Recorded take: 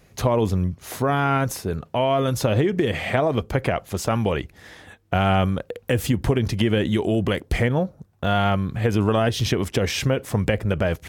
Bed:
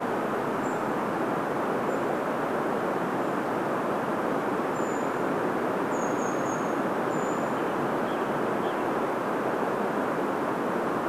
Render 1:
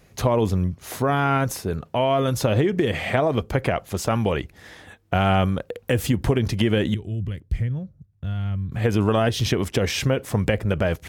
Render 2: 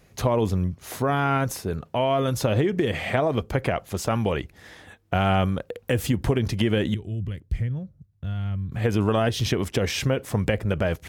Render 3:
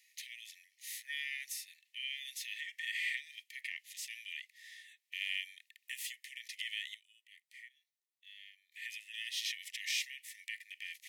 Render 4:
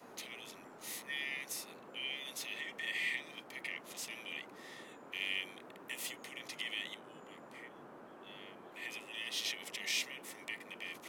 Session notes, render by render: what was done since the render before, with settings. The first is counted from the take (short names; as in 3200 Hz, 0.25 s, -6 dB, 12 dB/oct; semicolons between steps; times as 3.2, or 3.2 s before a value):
6.94–8.72 EQ curve 120 Hz 0 dB, 220 Hz -11 dB, 800 Hz -25 dB, 1800 Hz -17 dB
gain -2 dB
Chebyshev high-pass 1800 Hz, order 10; harmonic-percussive split percussive -10 dB
add bed -26.5 dB